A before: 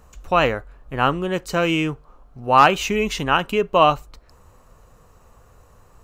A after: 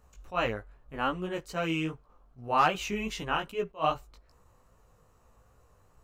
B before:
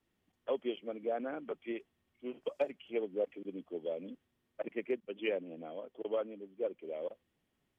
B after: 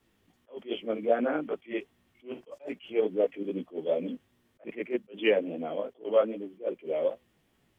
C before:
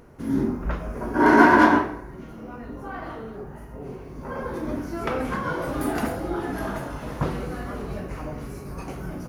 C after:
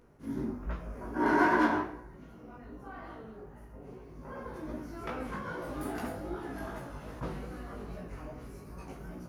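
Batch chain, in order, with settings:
chorus 2.5 Hz, delay 16 ms, depth 3.9 ms; attack slew limiter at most 270 dB/s; normalise peaks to -12 dBFS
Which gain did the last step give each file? -8.0, +13.5, -8.0 dB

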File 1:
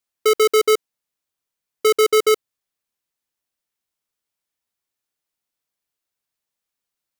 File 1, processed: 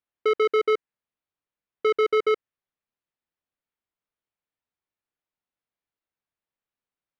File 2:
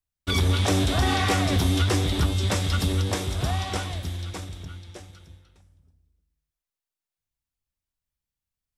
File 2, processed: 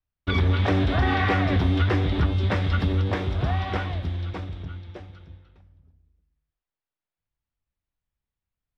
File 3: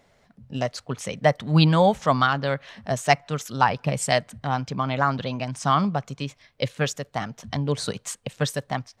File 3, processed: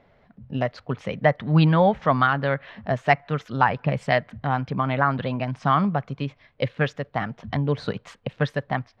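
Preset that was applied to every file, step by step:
air absorption 340 m; in parallel at -2.5 dB: compressor, threshold -26 dBFS; on the sum: dynamic EQ 1800 Hz, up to +5 dB, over -39 dBFS, Q 1.9; match loudness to -24 LUFS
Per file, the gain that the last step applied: -7.0, -1.5, -1.0 dB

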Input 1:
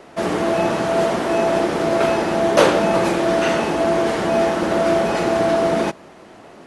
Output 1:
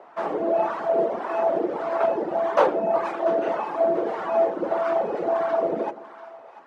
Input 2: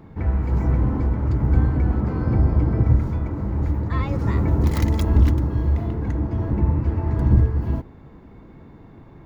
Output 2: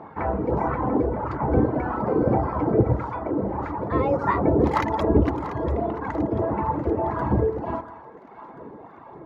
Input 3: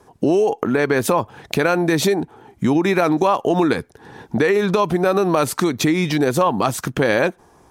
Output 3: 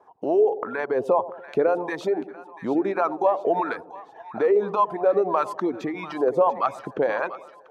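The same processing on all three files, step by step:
reverb removal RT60 1.3 s; wah 1.7 Hz 460–1100 Hz, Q 2; split-band echo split 810 Hz, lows 97 ms, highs 0.69 s, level -14 dB; match loudness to -24 LUFS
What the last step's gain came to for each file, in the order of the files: +1.5, +16.0, +1.0 dB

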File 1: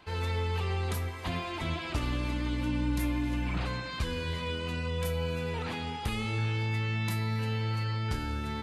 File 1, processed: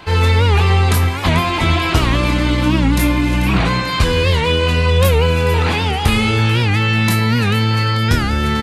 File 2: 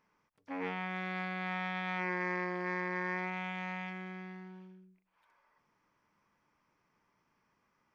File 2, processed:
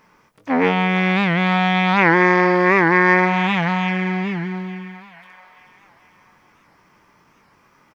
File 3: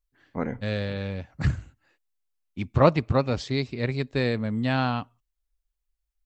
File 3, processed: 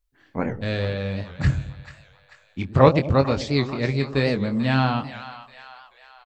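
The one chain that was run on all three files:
doubler 22 ms -8 dB; split-band echo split 730 Hz, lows 0.107 s, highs 0.44 s, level -12.5 dB; record warp 78 rpm, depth 160 cents; normalise peaks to -2 dBFS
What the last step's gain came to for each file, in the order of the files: +17.5, +19.0, +3.0 dB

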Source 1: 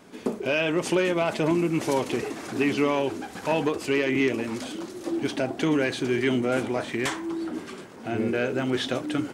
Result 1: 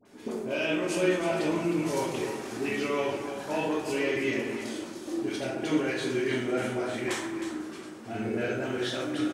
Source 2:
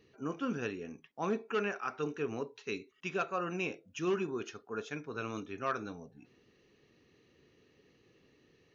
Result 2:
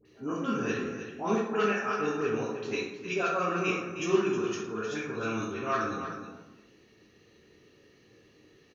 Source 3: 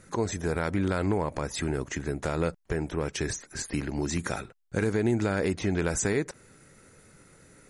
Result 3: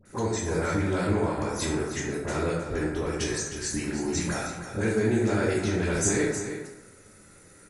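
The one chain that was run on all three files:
bell 9700 Hz +5 dB 2.6 oct; dispersion highs, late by 55 ms, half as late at 1200 Hz; on a send: echo 0.313 s -10 dB; on the sum: plate-style reverb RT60 0.93 s, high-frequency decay 0.5×, pre-delay 0 ms, DRR -3.5 dB; normalise peaks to -12 dBFS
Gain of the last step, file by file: -10.0, 0.0, -4.5 dB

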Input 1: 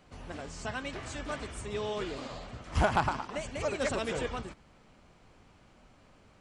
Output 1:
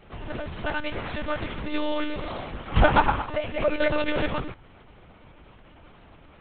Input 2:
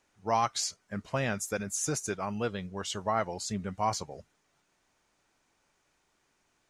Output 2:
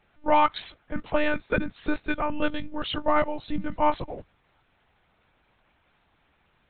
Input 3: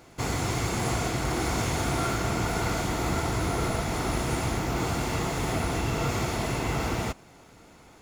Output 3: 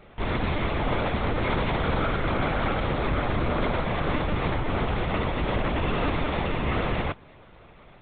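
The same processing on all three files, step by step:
monotone LPC vocoder at 8 kHz 300 Hz; match loudness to -27 LUFS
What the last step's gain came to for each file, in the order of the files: +9.0, +8.0, +2.5 dB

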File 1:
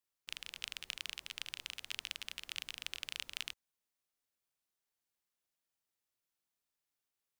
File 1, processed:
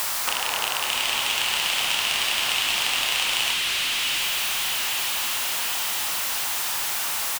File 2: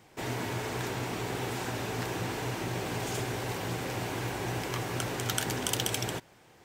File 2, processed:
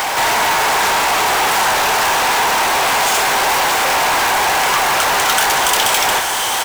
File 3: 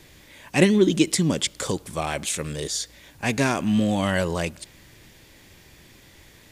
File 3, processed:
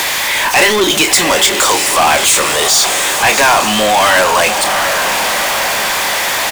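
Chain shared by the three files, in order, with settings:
in parallel at -1 dB: upward compressor, threshold -27 dBFS; on the sum: resonant high-pass 870 Hz, resonance Q 1.7; doubler 28 ms -13.5 dB; diffused feedback echo 0.714 s, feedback 60%, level -14.5 dB; power-law curve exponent 0.35; gain -1 dB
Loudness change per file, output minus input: +21.0, +20.0, +13.0 LU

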